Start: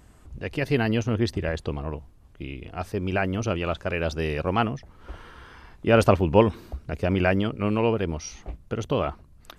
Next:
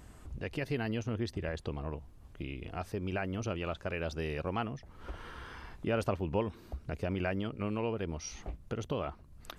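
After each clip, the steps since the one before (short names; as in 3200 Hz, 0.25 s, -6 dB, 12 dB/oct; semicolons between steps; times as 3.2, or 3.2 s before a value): compressor 2:1, threshold -40 dBFS, peak gain reduction 15.5 dB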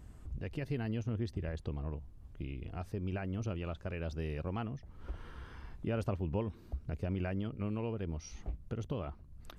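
low shelf 280 Hz +10.5 dB; gain -8 dB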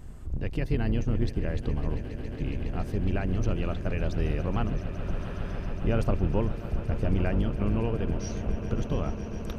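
octaver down 2 oct, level +2 dB; swelling echo 0.138 s, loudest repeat 8, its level -16.5 dB; gain +7 dB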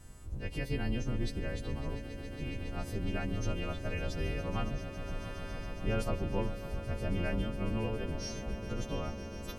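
frequency quantiser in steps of 2 st; spring tank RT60 3.1 s, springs 36 ms, chirp 60 ms, DRR 15.5 dB; gain -5.5 dB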